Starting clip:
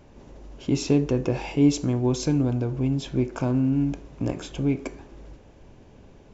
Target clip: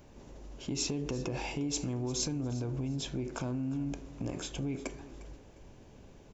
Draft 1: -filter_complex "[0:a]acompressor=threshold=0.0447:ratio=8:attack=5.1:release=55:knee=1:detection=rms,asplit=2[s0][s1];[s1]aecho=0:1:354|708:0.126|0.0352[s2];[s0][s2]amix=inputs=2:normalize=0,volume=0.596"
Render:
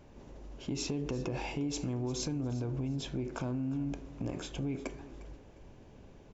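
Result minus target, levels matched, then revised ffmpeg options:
8 kHz band -5.0 dB
-filter_complex "[0:a]acompressor=threshold=0.0447:ratio=8:attack=5.1:release=55:knee=1:detection=rms,highshelf=f=6300:g=11,asplit=2[s0][s1];[s1]aecho=0:1:354|708:0.126|0.0352[s2];[s0][s2]amix=inputs=2:normalize=0,volume=0.596"

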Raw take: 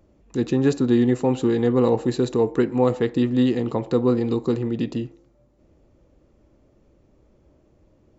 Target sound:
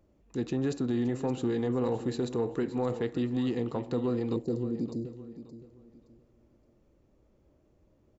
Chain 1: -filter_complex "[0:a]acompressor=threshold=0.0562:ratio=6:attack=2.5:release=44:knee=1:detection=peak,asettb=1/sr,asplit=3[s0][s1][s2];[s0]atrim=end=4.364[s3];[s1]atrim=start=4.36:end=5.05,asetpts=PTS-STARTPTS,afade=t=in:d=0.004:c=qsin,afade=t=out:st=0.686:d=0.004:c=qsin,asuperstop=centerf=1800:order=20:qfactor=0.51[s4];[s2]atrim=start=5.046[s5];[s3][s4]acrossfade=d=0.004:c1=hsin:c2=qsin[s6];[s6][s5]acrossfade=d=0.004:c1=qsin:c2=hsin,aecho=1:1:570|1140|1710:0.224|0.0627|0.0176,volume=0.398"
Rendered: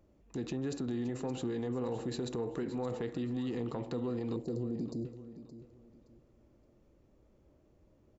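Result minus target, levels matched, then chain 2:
compression: peak gain reduction +6.5 dB
-filter_complex "[0:a]acompressor=threshold=0.141:ratio=6:attack=2.5:release=44:knee=1:detection=peak,asettb=1/sr,asplit=3[s0][s1][s2];[s0]atrim=end=4.364[s3];[s1]atrim=start=4.36:end=5.05,asetpts=PTS-STARTPTS,afade=t=in:d=0.004:c=qsin,afade=t=out:st=0.686:d=0.004:c=qsin,asuperstop=centerf=1800:order=20:qfactor=0.51[s4];[s2]atrim=start=5.046[s5];[s3][s4]acrossfade=d=0.004:c1=hsin:c2=qsin[s6];[s6][s5]acrossfade=d=0.004:c1=qsin:c2=hsin,aecho=1:1:570|1140|1710:0.224|0.0627|0.0176,volume=0.398"

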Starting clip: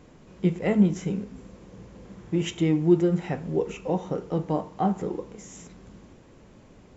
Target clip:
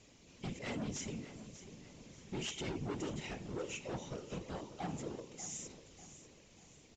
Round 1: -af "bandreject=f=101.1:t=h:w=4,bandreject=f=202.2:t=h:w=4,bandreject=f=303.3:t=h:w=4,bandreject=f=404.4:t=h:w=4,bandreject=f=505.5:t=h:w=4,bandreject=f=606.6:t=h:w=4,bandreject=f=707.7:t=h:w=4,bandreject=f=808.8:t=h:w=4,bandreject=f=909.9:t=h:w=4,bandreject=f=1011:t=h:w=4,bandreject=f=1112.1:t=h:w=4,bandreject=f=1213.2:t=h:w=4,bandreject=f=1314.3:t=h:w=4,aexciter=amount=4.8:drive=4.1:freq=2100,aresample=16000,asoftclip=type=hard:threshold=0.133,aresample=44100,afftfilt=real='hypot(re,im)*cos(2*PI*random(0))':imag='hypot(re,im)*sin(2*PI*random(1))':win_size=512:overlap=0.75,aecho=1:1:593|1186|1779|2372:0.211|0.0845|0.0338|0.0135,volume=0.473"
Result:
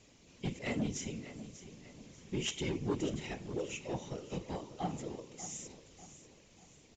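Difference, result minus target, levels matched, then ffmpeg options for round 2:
hard clipper: distortion -7 dB
-af "bandreject=f=101.1:t=h:w=4,bandreject=f=202.2:t=h:w=4,bandreject=f=303.3:t=h:w=4,bandreject=f=404.4:t=h:w=4,bandreject=f=505.5:t=h:w=4,bandreject=f=606.6:t=h:w=4,bandreject=f=707.7:t=h:w=4,bandreject=f=808.8:t=h:w=4,bandreject=f=909.9:t=h:w=4,bandreject=f=1011:t=h:w=4,bandreject=f=1112.1:t=h:w=4,bandreject=f=1213.2:t=h:w=4,bandreject=f=1314.3:t=h:w=4,aexciter=amount=4.8:drive=4.1:freq=2100,aresample=16000,asoftclip=type=hard:threshold=0.0531,aresample=44100,afftfilt=real='hypot(re,im)*cos(2*PI*random(0))':imag='hypot(re,im)*sin(2*PI*random(1))':win_size=512:overlap=0.75,aecho=1:1:593|1186|1779|2372:0.211|0.0845|0.0338|0.0135,volume=0.473"

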